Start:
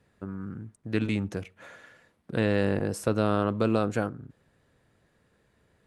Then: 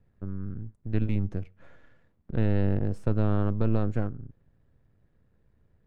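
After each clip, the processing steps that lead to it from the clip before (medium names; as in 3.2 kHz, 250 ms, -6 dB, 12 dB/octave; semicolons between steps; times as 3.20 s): partial rectifier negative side -7 dB; RIAA curve playback; trim -7 dB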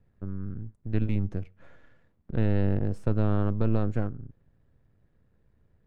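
no audible change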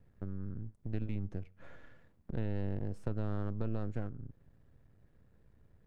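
partial rectifier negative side -7 dB; compression 2:1, threshold -42 dBFS, peak gain reduction 13 dB; trim +1.5 dB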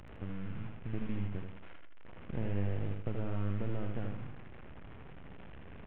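one-bit delta coder 16 kbps, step -43.5 dBFS; feedback delay 79 ms, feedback 36%, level -5 dB; trim -1 dB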